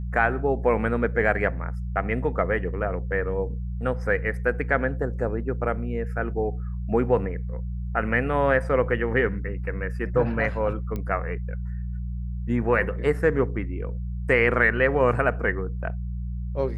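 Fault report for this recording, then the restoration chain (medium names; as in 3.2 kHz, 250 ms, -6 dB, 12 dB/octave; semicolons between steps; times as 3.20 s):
hum 60 Hz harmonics 3 -30 dBFS
10.96 s: pop -19 dBFS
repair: de-click; de-hum 60 Hz, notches 3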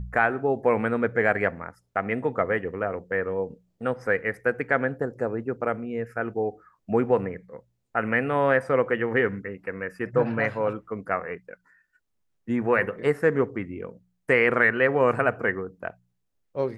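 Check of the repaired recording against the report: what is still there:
nothing left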